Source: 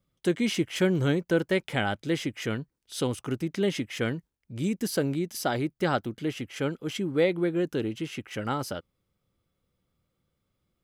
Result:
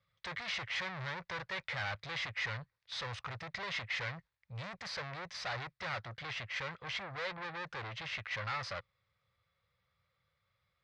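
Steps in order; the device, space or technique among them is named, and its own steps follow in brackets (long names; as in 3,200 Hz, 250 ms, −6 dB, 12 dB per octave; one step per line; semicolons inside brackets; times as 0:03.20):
scooped metal amplifier (tube saturation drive 39 dB, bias 0.6; loudspeaker in its box 92–4,000 Hz, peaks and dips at 110 Hz +4 dB, 230 Hz −6 dB, 540 Hz +6 dB, 1,100 Hz +4 dB, 1,900 Hz +5 dB, 3,000 Hz −8 dB; guitar amp tone stack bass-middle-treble 10-0-10)
level +12 dB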